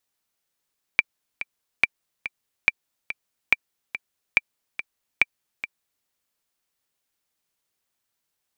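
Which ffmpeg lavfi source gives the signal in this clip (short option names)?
-f lavfi -i "aevalsrc='pow(10,(-2.5-13*gte(mod(t,2*60/142),60/142))/20)*sin(2*PI*2350*mod(t,60/142))*exp(-6.91*mod(t,60/142)/0.03)':d=5.07:s=44100"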